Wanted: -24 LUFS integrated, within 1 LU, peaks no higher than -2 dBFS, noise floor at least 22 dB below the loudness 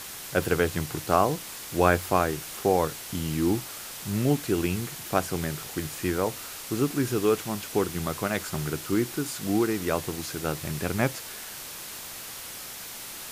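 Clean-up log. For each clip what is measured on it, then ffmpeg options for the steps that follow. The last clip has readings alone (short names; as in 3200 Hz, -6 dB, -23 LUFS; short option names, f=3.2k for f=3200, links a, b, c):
noise floor -40 dBFS; noise floor target -50 dBFS; loudness -28.0 LUFS; peak -5.0 dBFS; loudness target -24.0 LUFS
-> -af "afftdn=nr=10:nf=-40"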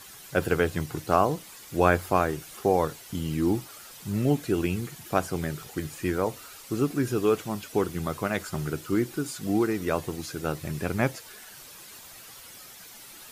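noise floor -47 dBFS; noise floor target -50 dBFS
-> -af "afftdn=nr=6:nf=-47"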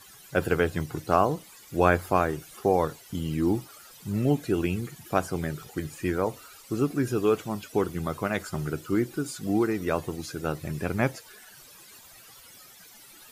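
noise floor -51 dBFS; loudness -28.0 LUFS; peak -5.0 dBFS; loudness target -24.0 LUFS
-> -af "volume=4dB,alimiter=limit=-2dB:level=0:latency=1"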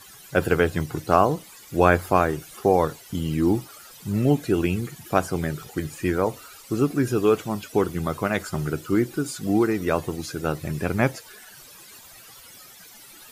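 loudness -24.0 LUFS; peak -2.0 dBFS; noise floor -47 dBFS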